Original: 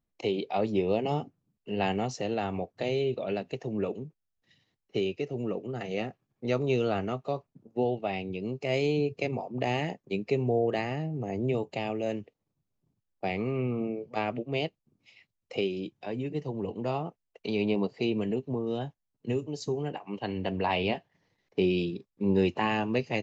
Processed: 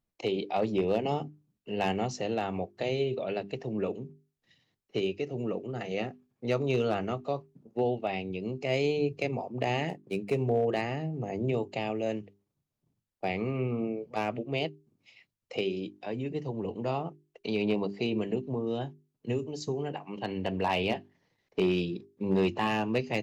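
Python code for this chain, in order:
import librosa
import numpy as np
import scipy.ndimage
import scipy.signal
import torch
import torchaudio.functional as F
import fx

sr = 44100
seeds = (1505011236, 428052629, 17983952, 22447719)

y = fx.median_filter(x, sr, points=9, at=(9.89, 10.46))
y = fx.hum_notches(y, sr, base_hz=50, count=8)
y = fx.clip_asym(y, sr, top_db=-20.5, bottom_db=-17.0)
y = fx.notch(y, sr, hz=6500.0, q=10.0, at=(3.22, 3.79))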